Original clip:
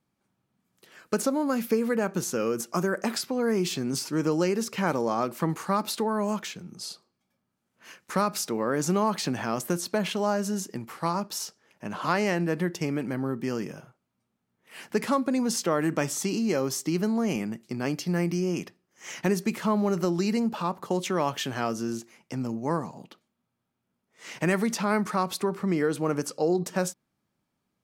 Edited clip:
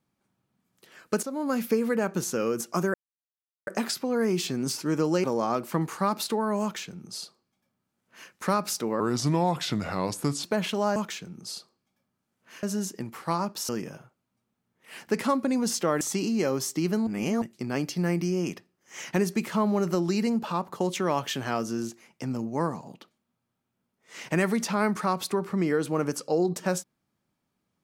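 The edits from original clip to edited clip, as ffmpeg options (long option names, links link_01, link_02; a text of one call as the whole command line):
ffmpeg -i in.wav -filter_complex "[0:a]asplit=12[link_01][link_02][link_03][link_04][link_05][link_06][link_07][link_08][link_09][link_10][link_11][link_12];[link_01]atrim=end=1.23,asetpts=PTS-STARTPTS,afade=type=out:start_time=1.226:duration=0.004:curve=hsin:silence=0.211349[link_13];[link_02]atrim=start=1.23:end=2.94,asetpts=PTS-STARTPTS,afade=type=in:duration=0.31:silence=0.211349,afade=type=out:start_time=1.706:duration=0.004:curve=hsin,apad=pad_dur=0.73[link_14];[link_03]atrim=start=2.94:end=4.512,asetpts=PTS-STARTPTS,afade=type=in:duration=0.004:curve=hsin[link_15];[link_04]atrim=start=4.918:end=8.684[link_16];[link_05]atrim=start=8.68:end=9.86,asetpts=PTS-STARTPTS,asetrate=36162,aresample=44100[link_17];[link_06]atrim=start=9.856:end=10.382[link_18];[link_07]atrim=start=6.298:end=7.972[link_19];[link_08]atrim=start=10.378:end=11.442[link_20];[link_09]atrim=start=13.518:end=15.842[link_21];[link_10]atrim=start=16.108:end=17.172[link_22];[link_11]atrim=start=17.168:end=17.522,asetpts=PTS-STARTPTS,areverse[link_23];[link_12]atrim=start=17.518[link_24];[link_13][link_14][link_15]concat=n=3:v=0:a=1[link_25];[link_25][link_16]acrossfade=duration=0.004:curve1=hsin:curve2=hsin[link_26];[link_26][link_17]acrossfade=duration=0.004:curve1=hsin:curve2=hsin[link_27];[link_27][link_18]acrossfade=duration=0.004:curve1=hsin:curve2=hsin[link_28];[link_28][link_19]acrossfade=duration=0.004:curve1=hsin:curve2=hsin[link_29];[link_29][link_20]acrossfade=duration=0.004:curve1=hsin:curve2=hsin[link_30];[link_30][link_21]acrossfade=duration=0.004:curve1=hsin:curve2=hsin[link_31];[link_31][link_22]acrossfade=duration=0.004:curve1=hsin:curve2=hsin[link_32];[link_32][link_23]acrossfade=duration=0.004:curve1=hsin:curve2=hsin[link_33];[link_33][link_24]acrossfade=duration=0.004:curve1=hsin:curve2=hsin" out.wav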